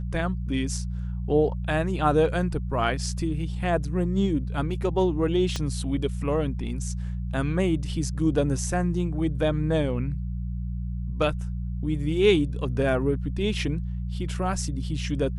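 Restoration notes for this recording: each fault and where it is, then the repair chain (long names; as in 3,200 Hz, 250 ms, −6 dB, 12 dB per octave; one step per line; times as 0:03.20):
mains hum 60 Hz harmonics 3 −30 dBFS
0:05.56: click −15 dBFS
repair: click removal
hum removal 60 Hz, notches 3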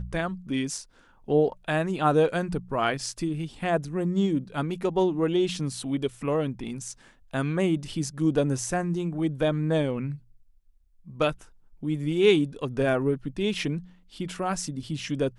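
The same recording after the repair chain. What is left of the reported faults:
0:05.56: click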